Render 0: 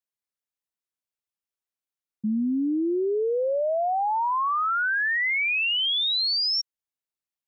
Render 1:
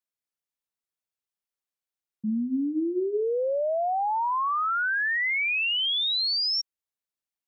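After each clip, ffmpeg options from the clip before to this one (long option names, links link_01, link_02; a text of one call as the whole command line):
ffmpeg -i in.wav -af "bandreject=frequency=50:width_type=h:width=6,bandreject=frequency=100:width_type=h:width=6,bandreject=frequency=150:width_type=h:width=6,bandreject=frequency=200:width_type=h:width=6,bandreject=frequency=250:width_type=h:width=6,bandreject=frequency=300:width_type=h:width=6,bandreject=frequency=350:width_type=h:width=6,bandreject=frequency=400:width_type=h:width=6,volume=-1.5dB" out.wav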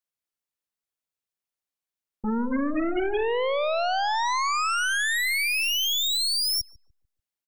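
ffmpeg -i in.wav -filter_complex "[0:a]aeval=exprs='0.1*(cos(1*acos(clip(val(0)/0.1,-1,1)))-cos(1*PI/2))+0.0447*(cos(2*acos(clip(val(0)/0.1,-1,1)))-cos(2*PI/2))+0.0126*(cos(4*acos(clip(val(0)/0.1,-1,1)))-cos(4*PI/2))+0.00447*(cos(6*acos(clip(val(0)/0.1,-1,1)))-cos(6*PI/2))+0.0251*(cos(8*acos(clip(val(0)/0.1,-1,1)))-cos(8*PI/2))':channel_layout=same,asplit=2[link_01][link_02];[link_02]adelay=146,lowpass=frequency=870:poles=1,volume=-13dB,asplit=2[link_03][link_04];[link_04]adelay=146,lowpass=frequency=870:poles=1,volume=0.37,asplit=2[link_05][link_06];[link_06]adelay=146,lowpass=frequency=870:poles=1,volume=0.37,asplit=2[link_07][link_08];[link_08]adelay=146,lowpass=frequency=870:poles=1,volume=0.37[link_09];[link_01][link_03][link_05][link_07][link_09]amix=inputs=5:normalize=0" out.wav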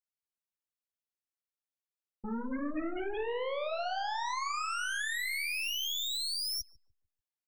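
ffmpeg -i in.wav -af "flanger=delay=3.3:depth=9.6:regen=-36:speed=1.5:shape=triangular,volume=-6dB" out.wav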